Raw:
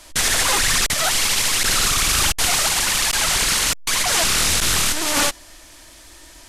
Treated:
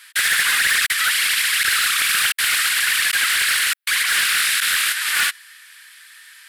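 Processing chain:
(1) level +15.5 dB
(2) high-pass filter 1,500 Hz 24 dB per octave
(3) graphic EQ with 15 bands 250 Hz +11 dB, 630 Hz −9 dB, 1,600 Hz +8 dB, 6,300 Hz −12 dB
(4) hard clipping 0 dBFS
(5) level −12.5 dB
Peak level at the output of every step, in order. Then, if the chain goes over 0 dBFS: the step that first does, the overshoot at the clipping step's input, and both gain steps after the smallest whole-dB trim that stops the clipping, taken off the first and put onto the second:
+8.5, +9.5, +7.5, 0.0, −12.5 dBFS
step 1, 7.5 dB
step 1 +7.5 dB, step 5 −4.5 dB

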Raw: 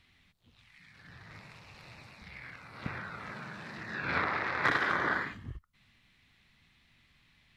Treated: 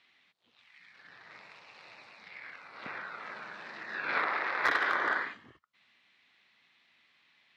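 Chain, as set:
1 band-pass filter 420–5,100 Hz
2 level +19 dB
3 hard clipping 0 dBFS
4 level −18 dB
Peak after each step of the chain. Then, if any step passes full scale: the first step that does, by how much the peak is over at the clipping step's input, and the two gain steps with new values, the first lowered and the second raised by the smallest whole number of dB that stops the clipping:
−13.5, +5.5, 0.0, −18.0 dBFS
step 2, 5.5 dB
step 2 +13 dB, step 4 −12 dB

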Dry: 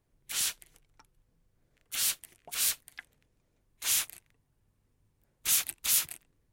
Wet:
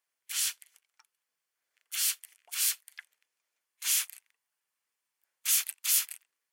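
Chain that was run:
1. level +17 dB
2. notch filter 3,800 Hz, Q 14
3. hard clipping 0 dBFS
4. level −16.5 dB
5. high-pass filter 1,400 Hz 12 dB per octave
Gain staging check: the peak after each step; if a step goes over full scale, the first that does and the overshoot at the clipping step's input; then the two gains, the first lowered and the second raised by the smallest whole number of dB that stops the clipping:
+4.5, +4.5, 0.0, −16.5, −15.0 dBFS
step 1, 4.5 dB
step 1 +12 dB, step 4 −11.5 dB

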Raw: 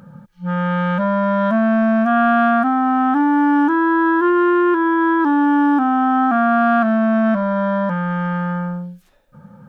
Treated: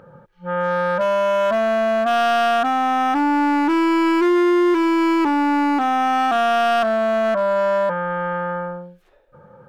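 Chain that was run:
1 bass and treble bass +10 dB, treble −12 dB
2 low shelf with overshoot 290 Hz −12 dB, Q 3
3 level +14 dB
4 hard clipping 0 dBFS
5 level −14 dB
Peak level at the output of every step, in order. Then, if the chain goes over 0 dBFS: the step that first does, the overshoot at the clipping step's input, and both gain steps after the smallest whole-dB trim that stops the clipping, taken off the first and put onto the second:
−4.0, −4.0, +10.0, 0.0, −14.0 dBFS
step 3, 10.0 dB
step 3 +4 dB, step 5 −4 dB

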